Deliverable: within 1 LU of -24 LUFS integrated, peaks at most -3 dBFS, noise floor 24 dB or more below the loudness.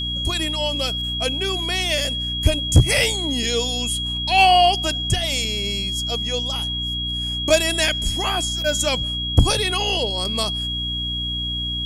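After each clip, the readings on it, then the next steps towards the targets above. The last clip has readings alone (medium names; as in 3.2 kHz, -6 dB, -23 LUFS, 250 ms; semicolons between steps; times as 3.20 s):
hum 60 Hz; highest harmonic 300 Hz; hum level -27 dBFS; steady tone 3.3 kHz; tone level -24 dBFS; loudness -20.0 LUFS; peak level -4.0 dBFS; loudness target -24.0 LUFS
-> hum notches 60/120/180/240/300 Hz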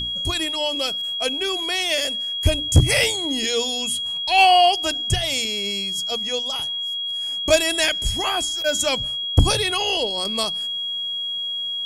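hum not found; steady tone 3.3 kHz; tone level -24 dBFS
-> band-stop 3.3 kHz, Q 30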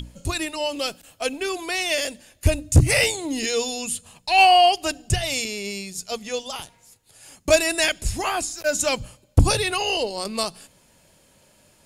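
steady tone not found; loudness -22.0 LUFS; peak level -5.0 dBFS; loudness target -24.0 LUFS
-> trim -2 dB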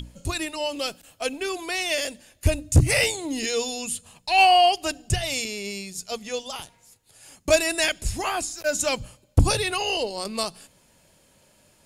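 loudness -24.0 LUFS; peak level -7.0 dBFS; noise floor -60 dBFS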